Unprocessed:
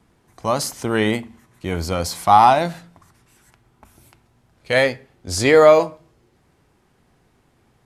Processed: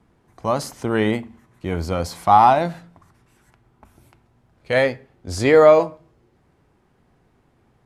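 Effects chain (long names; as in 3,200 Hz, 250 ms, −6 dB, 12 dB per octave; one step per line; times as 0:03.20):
high-shelf EQ 2,700 Hz −9 dB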